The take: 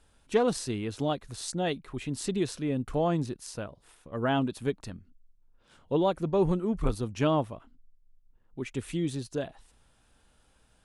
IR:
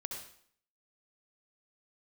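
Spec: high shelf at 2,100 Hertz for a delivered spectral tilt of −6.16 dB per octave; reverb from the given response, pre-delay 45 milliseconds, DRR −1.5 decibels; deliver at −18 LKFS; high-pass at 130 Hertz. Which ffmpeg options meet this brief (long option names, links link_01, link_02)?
-filter_complex "[0:a]highpass=130,highshelf=frequency=2100:gain=-3.5,asplit=2[link_01][link_02];[1:a]atrim=start_sample=2205,adelay=45[link_03];[link_02][link_03]afir=irnorm=-1:irlink=0,volume=2dB[link_04];[link_01][link_04]amix=inputs=2:normalize=0,volume=9.5dB"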